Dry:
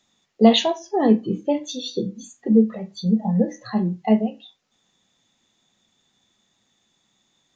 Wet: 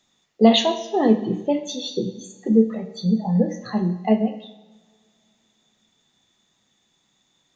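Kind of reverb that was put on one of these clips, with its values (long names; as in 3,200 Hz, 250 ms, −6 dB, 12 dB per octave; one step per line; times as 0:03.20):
coupled-rooms reverb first 0.98 s, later 3 s, from −23 dB, DRR 9 dB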